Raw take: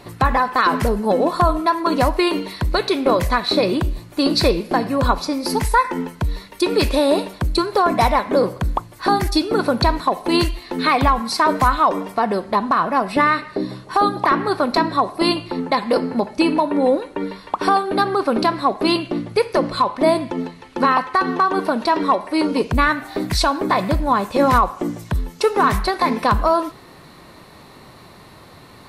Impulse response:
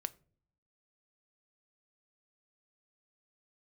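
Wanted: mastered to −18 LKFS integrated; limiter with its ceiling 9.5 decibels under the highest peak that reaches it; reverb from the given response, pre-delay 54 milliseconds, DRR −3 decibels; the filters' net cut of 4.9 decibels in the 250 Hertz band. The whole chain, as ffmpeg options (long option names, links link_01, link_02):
-filter_complex "[0:a]equalizer=frequency=250:width_type=o:gain=-6.5,alimiter=limit=-14dB:level=0:latency=1,asplit=2[link_01][link_02];[1:a]atrim=start_sample=2205,adelay=54[link_03];[link_02][link_03]afir=irnorm=-1:irlink=0,volume=4dB[link_04];[link_01][link_04]amix=inputs=2:normalize=0,volume=1.5dB"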